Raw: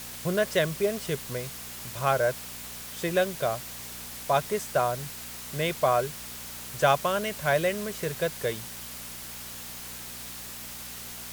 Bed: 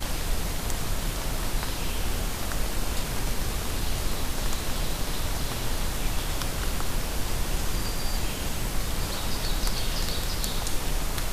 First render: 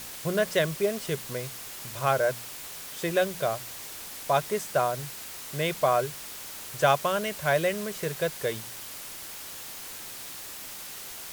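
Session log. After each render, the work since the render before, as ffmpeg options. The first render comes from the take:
-af "bandreject=f=60:t=h:w=4,bandreject=f=120:t=h:w=4,bandreject=f=180:t=h:w=4,bandreject=f=240:t=h:w=4"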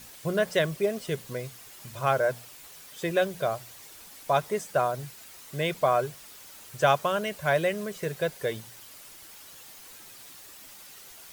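-af "afftdn=nr=9:nf=-41"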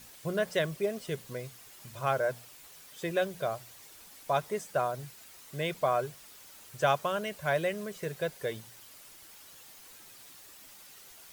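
-af "volume=0.596"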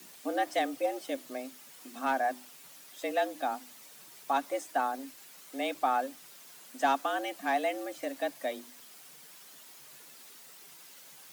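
-filter_complex "[0:a]afreqshift=130,acrossover=split=640|930[s0][s1][s2];[s2]asoftclip=type=tanh:threshold=0.0447[s3];[s0][s1][s3]amix=inputs=3:normalize=0"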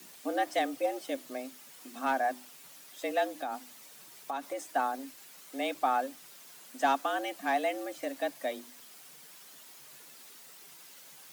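-filter_complex "[0:a]asettb=1/sr,asplit=3[s0][s1][s2];[s0]atrim=end=3.414[s3];[s1]atrim=start=3.41:end=4.7,asetpts=PTS-STARTPTS,afade=t=in:d=0.004:c=qsin,afade=t=out:st=1.286:d=0.004:c=qsin,acompressor=threshold=0.0282:ratio=6:attack=3.2:release=140:knee=1:detection=peak[s4];[s2]atrim=start=4.696[s5];[s3][s4]acrossfade=d=0.004:c1=hsin:c2=qsin[s6];[s6][s5]acrossfade=d=0.004:c1=qsin:c2=hsin"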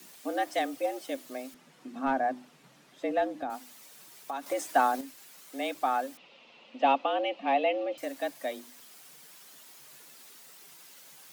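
-filter_complex "[0:a]asettb=1/sr,asplit=3[s0][s1][s2];[s0]atrim=end=1.544[s3];[s1]atrim=start=1.54:end=3.5,asetpts=PTS-STARTPTS,afade=t=in:d=0.004:c=qsin,afade=t=out:st=1.956:d=0.004:c=qsin,aemphasis=mode=reproduction:type=riaa[s4];[s2]atrim=start=3.496[s5];[s3][s4]acrossfade=d=0.004:c1=hsin:c2=qsin[s6];[s6][s5]acrossfade=d=0.004:c1=qsin:c2=hsin,asettb=1/sr,asplit=3[s7][s8][s9];[s7]atrim=end=4.464[s10];[s8]atrim=start=4.46:end=5.01,asetpts=PTS-STARTPTS,afade=t=in:d=0.004:c=qsin,afade=t=out:st=0.546:d=0.004:c=qsin,acontrast=54[s11];[s9]atrim=start=5.006[s12];[s10][s11]acrossfade=d=0.004:c1=hsin:c2=qsin[s13];[s13][s12]acrossfade=d=0.004:c1=qsin:c2=hsin,asettb=1/sr,asplit=3[s14][s15][s16];[s14]atrim=end=6.174[s17];[s15]atrim=start=6.17:end=7.98,asetpts=PTS-STARTPTS,afade=t=in:d=0.004:c=qsin,afade=t=out:st=1.806:d=0.004:c=qsin,highpass=150,equalizer=f=230:t=q:w=4:g=7,equalizer=f=530:t=q:w=4:g=10,equalizer=f=860:t=q:w=4:g=4,equalizer=f=1600:t=q:w=4:g=-10,equalizer=f=2700:t=q:w=4:g=10,lowpass=f=3800:w=0.5412,lowpass=f=3800:w=1.3066[s18];[s16]atrim=start=7.976[s19];[s17][s18]acrossfade=d=0.004:c1=hsin:c2=qsin[s20];[s20][s19]acrossfade=d=0.004:c1=qsin:c2=hsin"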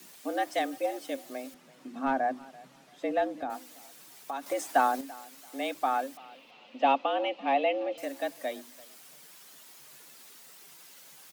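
-af "aecho=1:1:337|674:0.0794|0.0199"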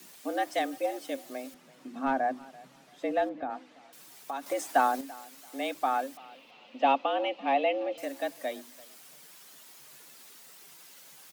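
-filter_complex "[0:a]asettb=1/sr,asplit=3[s0][s1][s2];[s0]atrim=end=3.294[s3];[s1]atrim=start=3.29:end=3.93,asetpts=PTS-STARTPTS,afade=t=in:d=0.004:c=qsin,afade=t=out:st=0.636:d=0.004:c=qsin,lowpass=2800[s4];[s2]atrim=start=3.926[s5];[s3][s4]acrossfade=d=0.004:c1=hsin:c2=qsin[s6];[s6][s5]acrossfade=d=0.004:c1=qsin:c2=hsin"

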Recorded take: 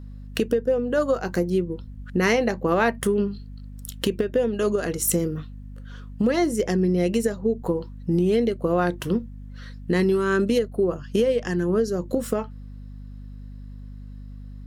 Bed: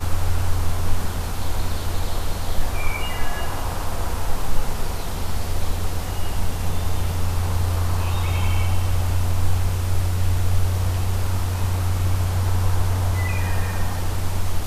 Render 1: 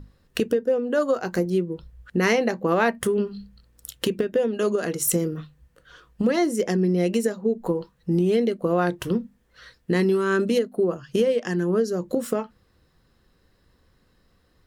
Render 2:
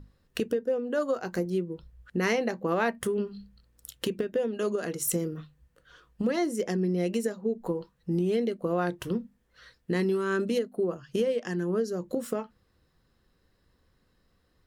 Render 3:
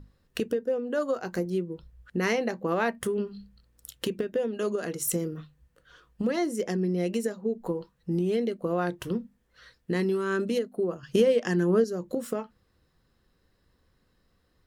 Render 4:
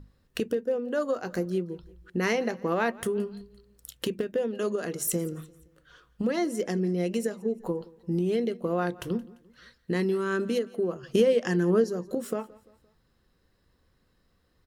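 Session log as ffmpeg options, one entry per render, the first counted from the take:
-af "bandreject=f=50:t=h:w=6,bandreject=f=100:t=h:w=6,bandreject=f=150:t=h:w=6,bandreject=f=200:t=h:w=6,bandreject=f=250:t=h:w=6"
-af "volume=0.501"
-filter_complex "[0:a]asplit=3[s0][s1][s2];[s0]atrim=end=11.032[s3];[s1]atrim=start=11.028:end=11.842,asetpts=PTS-STARTPTS,volume=1.88[s4];[s2]atrim=start=11.838[s5];[s3][s4]acrossfade=d=0.004:c1=hsin:c2=hsin[s6];[s6][s5]acrossfade=d=0.004:c1=hsin:c2=hsin"
-af "aecho=1:1:172|344|516:0.0794|0.0357|0.0161"

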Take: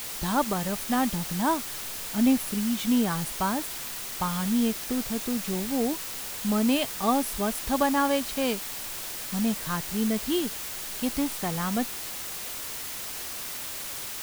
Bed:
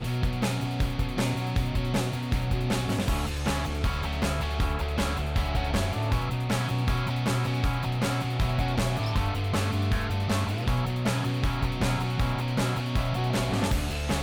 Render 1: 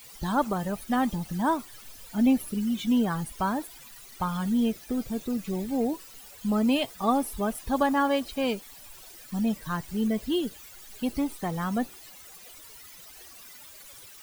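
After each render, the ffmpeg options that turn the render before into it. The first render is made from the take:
-af "afftdn=nr=16:nf=-36"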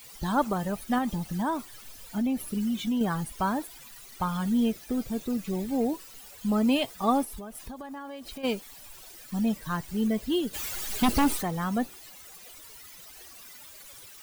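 -filter_complex "[0:a]asettb=1/sr,asplit=3[s0][s1][s2];[s0]atrim=end=0.984[s3];[s1]atrim=start=0.98:end=3.01,asetpts=PTS-STARTPTS,afade=t=in:d=0.004:c=qsin,afade=t=out:st=2.026:d=0.004:c=qsin,acompressor=threshold=0.0631:ratio=6:attack=3.2:release=140:knee=1:detection=peak[s4];[s2]atrim=start=3.006[s5];[s3][s4]acrossfade=d=0.004:c1=hsin:c2=qsin[s6];[s6][s5]acrossfade=d=0.004:c1=qsin:c2=hsin,asplit=3[s7][s8][s9];[s7]afade=t=out:st=7.24:d=0.02[s10];[s8]acompressor=threshold=0.0158:ratio=16:attack=3.2:release=140:knee=1:detection=peak,afade=t=in:st=7.24:d=0.02,afade=t=out:st=8.43:d=0.02[s11];[s9]afade=t=in:st=8.43:d=0.02[s12];[s10][s11][s12]amix=inputs=3:normalize=0,asplit=3[s13][s14][s15];[s13]afade=t=out:st=10.53:d=0.02[s16];[s14]aeval=exprs='0.133*sin(PI/2*2.82*val(0)/0.133)':c=same,afade=t=in:st=10.53:d=0.02,afade=t=out:st=11.41:d=0.02[s17];[s15]afade=t=in:st=11.41:d=0.02[s18];[s16][s17][s18]amix=inputs=3:normalize=0"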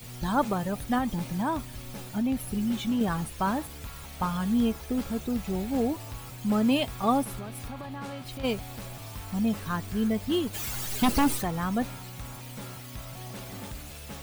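-filter_complex "[1:a]volume=0.188[s0];[0:a][s0]amix=inputs=2:normalize=0"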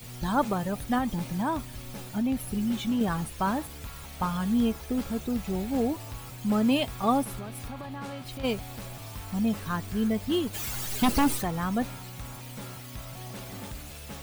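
-af anull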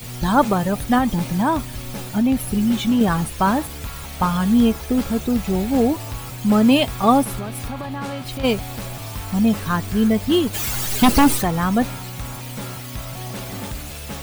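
-af "volume=2.99"

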